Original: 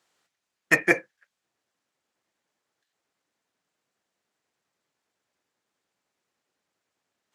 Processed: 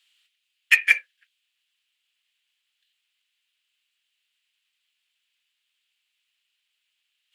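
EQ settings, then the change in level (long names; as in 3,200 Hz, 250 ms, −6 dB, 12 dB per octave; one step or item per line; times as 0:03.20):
high-pass with resonance 2,900 Hz, resonance Q 3.8
parametric band 6,000 Hz −8.5 dB 0.64 octaves
+4.5 dB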